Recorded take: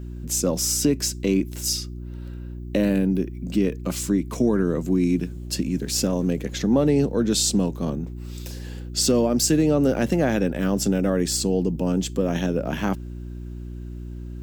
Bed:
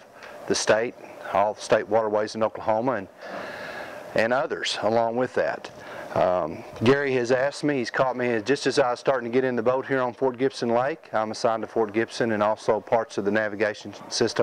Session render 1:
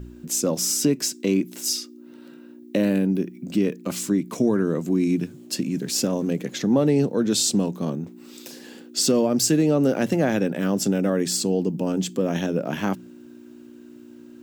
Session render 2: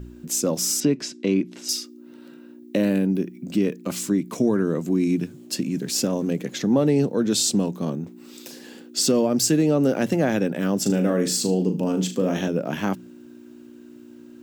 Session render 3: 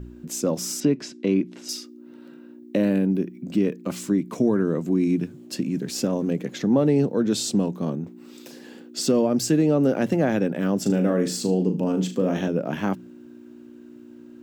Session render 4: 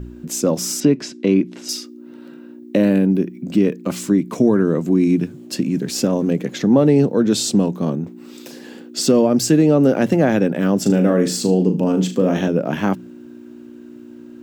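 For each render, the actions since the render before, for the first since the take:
de-hum 60 Hz, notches 3
0.8–1.69 LPF 4300 Hz; 10.82–12.48 flutter echo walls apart 6.5 m, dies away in 0.3 s
high shelf 3200 Hz -8 dB
gain +6 dB

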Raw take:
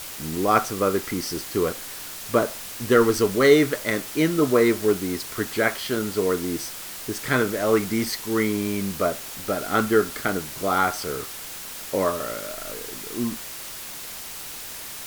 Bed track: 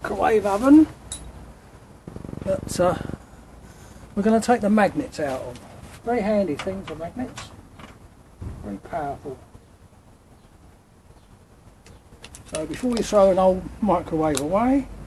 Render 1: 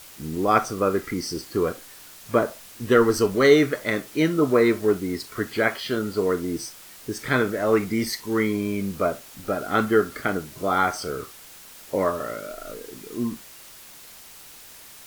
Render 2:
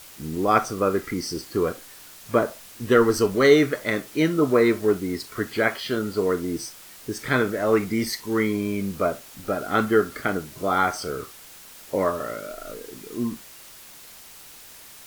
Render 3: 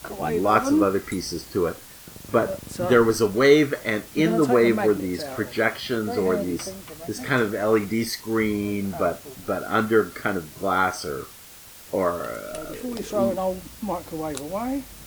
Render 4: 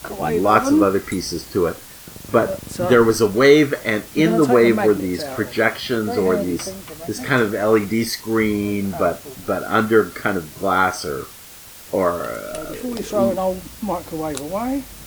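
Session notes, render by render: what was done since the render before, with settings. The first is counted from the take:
noise print and reduce 9 dB
nothing audible
add bed track -8 dB
gain +4.5 dB; limiter -1 dBFS, peak gain reduction 2 dB

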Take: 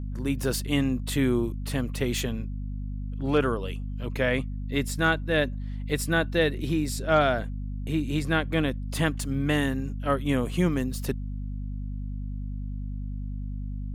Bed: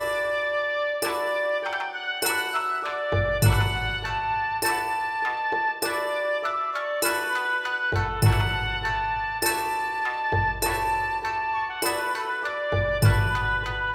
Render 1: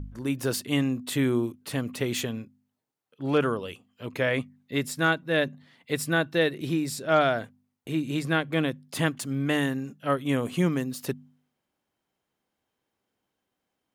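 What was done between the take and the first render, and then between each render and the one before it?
de-hum 50 Hz, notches 5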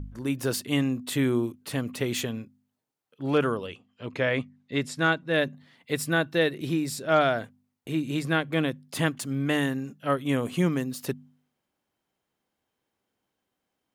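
3.66–5.32 LPF 5000 Hz -> 8300 Hz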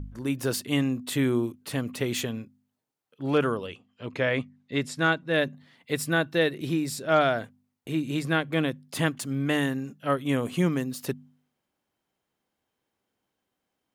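nothing audible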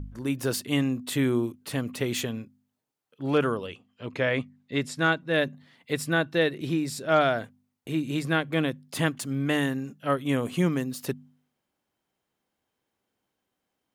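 5.93–6.96 high shelf 11000 Hz -7.5 dB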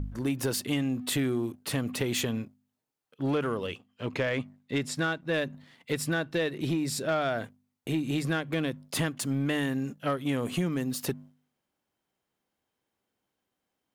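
compressor 6:1, threshold -28 dBFS, peak gain reduction 11 dB; sample leveller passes 1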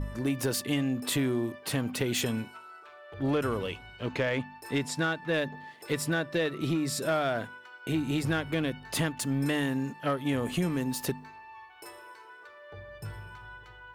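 add bed -21.5 dB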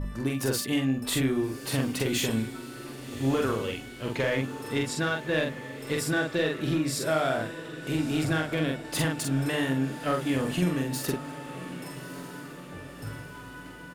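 doubler 45 ms -2.5 dB; diffused feedback echo 1.201 s, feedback 58%, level -13 dB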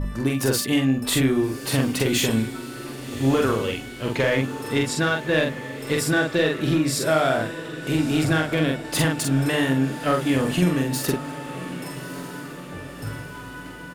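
gain +6 dB

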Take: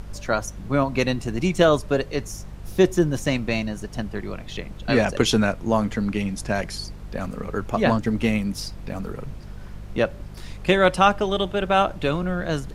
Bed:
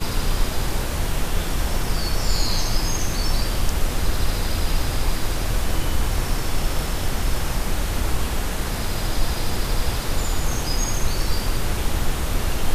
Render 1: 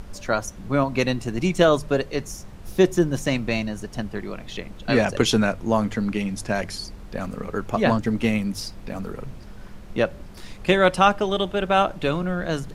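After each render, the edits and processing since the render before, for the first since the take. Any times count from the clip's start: de-hum 50 Hz, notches 3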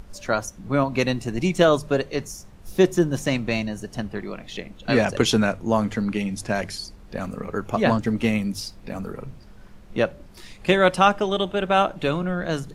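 noise print and reduce 6 dB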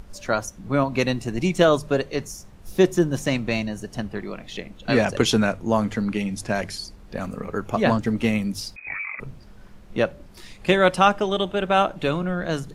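8.76–9.2 inverted band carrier 2500 Hz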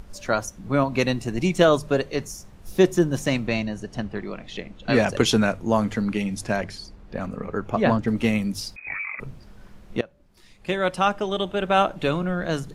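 3.47–4.94 air absorption 53 m; 6.56–8.08 LPF 2800 Hz 6 dB/oct; 10.01–11.82 fade in, from -22.5 dB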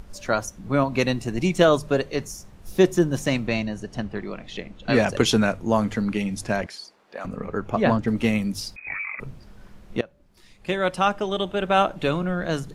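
6.66–7.25 HPF 550 Hz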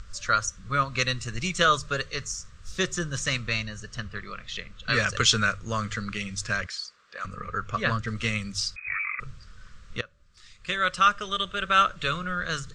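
EQ curve 100 Hz 0 dB, 310 Hz -18 dB, 510 Hz -8 dB, 840 Hz -21 dB, 1200 Hz +6 dB, 2300 Hz 0 dB, 3700 Hz +4 dB, 8000 Hz +5 dB, 11000 Hz -21 dB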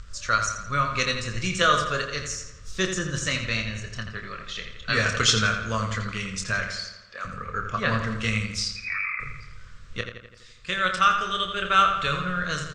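doubler 27 ms -7.5 dB; darkening echo 84 ms, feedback 58%, low-pass 5000 Hz, level -7 dB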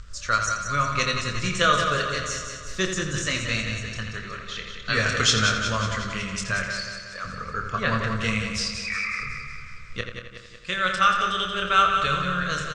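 feedback echo 0.183 s, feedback 57%, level -7.5 dB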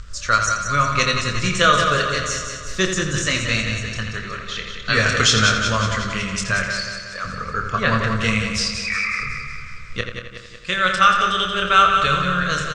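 gain +5.5 dB; limiter -3 dBFS, peak gain reduction 2.5 dB

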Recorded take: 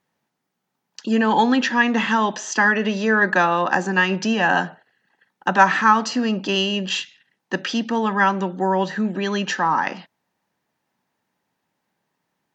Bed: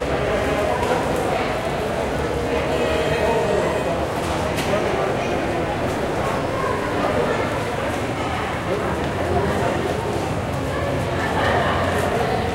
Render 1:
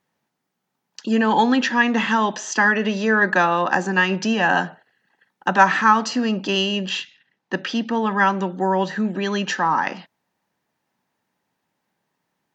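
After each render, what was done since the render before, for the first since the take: 6.9–8.11 air absorption 76 m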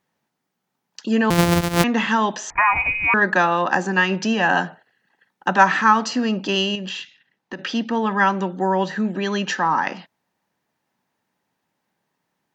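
1.3–1.84 sample sorter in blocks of 256 samples; 2.5–3.14 inverted band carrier 2700 Hz; 6.75–7.59 compressor, threshold -26 dBFS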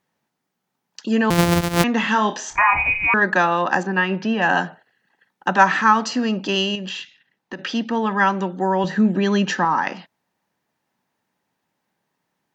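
2.01–3.08 flutter echo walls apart 4.9 m, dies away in 0.22 s; 3.83–4.42 air absorption 230 m; 8.84–9.65 low shelf 380 Hz +8 dB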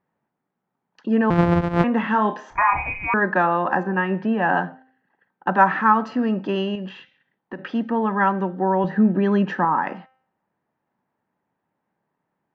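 LPF 1500 Hz 12 dB/oct; de-hum 260.8 Hz, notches 25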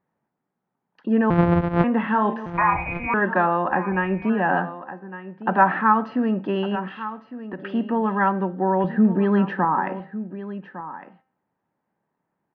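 air absorption 240 m; echo 1.157 s -13.5 dB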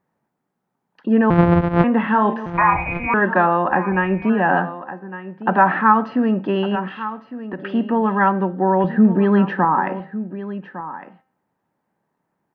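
gain +4 dB; limiter -2 dBFS, peak gain reduction 2.5 dB

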